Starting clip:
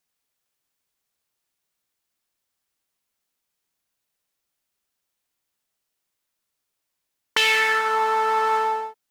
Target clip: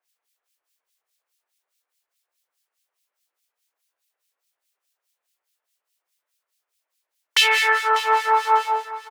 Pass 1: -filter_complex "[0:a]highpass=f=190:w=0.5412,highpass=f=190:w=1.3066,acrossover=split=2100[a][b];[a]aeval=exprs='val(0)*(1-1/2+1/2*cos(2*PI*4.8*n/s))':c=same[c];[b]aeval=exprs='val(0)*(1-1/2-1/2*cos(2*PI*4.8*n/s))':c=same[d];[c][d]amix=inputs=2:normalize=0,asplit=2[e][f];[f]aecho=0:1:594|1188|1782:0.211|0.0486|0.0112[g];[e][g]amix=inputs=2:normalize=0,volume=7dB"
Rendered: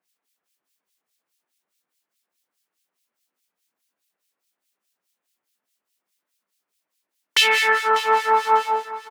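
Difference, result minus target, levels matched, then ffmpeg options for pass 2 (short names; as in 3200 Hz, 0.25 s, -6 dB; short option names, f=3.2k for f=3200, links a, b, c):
250 Hz band +12.0 dB
-filter_complex "[0:a]highpass=f=450:w=0.5412,highpass=f=450:w=1.3066,acrossover=split=2100[a][b];[a]aeval=exprs='val(0)*(1-1/2+1/2*cos(2*PI*4.8*n/s))':c=same[c];[b]aeval=exprs='val(0)*(1-1/2-1/2*cos(2*PI*4.8*n/s))':c=same[d];[c][d]amix=inputs=2:normalize=0,asplit=2[e][f];[f]aecho=0:1:594|1188|1782:0.211|0.0486|0.0112[g];[e][g]amix=inputs=2:normalize=0,volume=7dB"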